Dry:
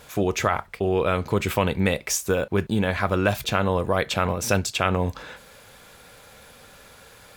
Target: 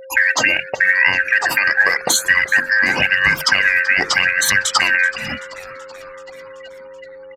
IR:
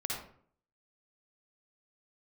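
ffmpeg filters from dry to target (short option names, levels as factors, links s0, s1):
-filter_complex "[0:a]afftfilt=real='real(if(lt(b,272),68*(eq(floor(b/68),0)*1+eq(floor(b/68),1)*0+eq(floor(b/68),2)*3+eq(floor(b/68),3)*2)+mod(b,68),b),0)':imag='imag(if(lt(b,272),68*(eq(floor(b/68),0)*1+eq(floor(b/68),1)*0+eq(floor(b/68),2)*3+eq(floor(b/68),3)*2)+mod(b,68),b),0)':win_size=2048:overlap=0.75,afftdn=nr=18:nf=-45,bandreject=f=50:t=h:w=6,bandreject=f=100:t=h:w=6,bandreject=f=150:t=h:w=6,bandreject=f=200:t=h:w=6,bandreject=f=250:t=h:w=6,bandreject=f=300:t=h:w=6,bandreject=f=350:t=h:w=6,bandreject=f=400:t=h:w=6,bandreject=f=450:t=h:w=6,afftfilt=real='re*gte(hypot(re,im),0.0126)':imag='im*gte(hypot(re,im),0.0126)':win_size=1024:overlap=0.75,agate=range=0.0224:threshold=0.00178:ratio=3:detection=peak,highpass=120,acompressor=threshold=0.0251:ratio=5,aphaser=in_gain=1:out_gain=1:delay=3.3:decay=0.47:speed=0.89:type=sinusoidal,aeval=exprs='val(0)+0.00224*sin(2*PI*530*n/s)':c=same,asplit=2[s0][s1];[s1]asplit=6[s2][s3][s4][s5][s6][s7];[s2]adelay=381,afreqshift=-120,volume=0.1[s8];[s3]adelay=762,afreqshift=-240,volume=0.0638[s9];[s4]adelay=1143,afreqshift=-360,volume=0.0407[s10];[s5]adelay=1524,afreqshift=-480,volume=0.0263[s11];[s6]adelay=1905,afreqshift=-600,volume=0.0168[s12];[s7]adelay=2286,afreqshift=-720,volume=0.0107[s13];[s8][s9][s10][s11][s12][s13]amix=inputs=6:normalize=0[s14];[s0][s14]amix=inputs=2:normalize=0,aresample=32000,aresample=44100,alimiter=level_in=9.44:limit=0.891:release=50:level=0:latency=1,volume=0.891"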